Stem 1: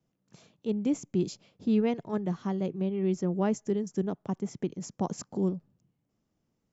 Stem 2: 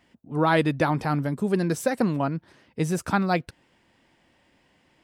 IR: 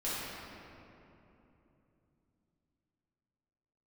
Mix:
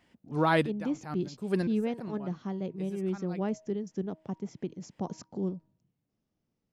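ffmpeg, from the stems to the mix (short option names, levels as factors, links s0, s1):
-filter_complex "[0:a]lowpass=f=6100:w=0.5412,lowpass=f=6100:w=1.3066,equalizer=f=1100:w=1.5:g=-2,bandreject=f=316.9:t=h:w=4,bandreject=f=633.8:t=h:w=4,bandreject=f=950.7:t=h:w=4,volume=0.631,asplit=2[s0][s1];[1:a]volume=0.631[s2];[s1]apad=whole_len=222019[s3];[s2][s3]sidechaincompress=threshold=0.00282:ratio=8:attack=16:release=202[s4];[s0][s4]amix=inputs=2:normalize=0"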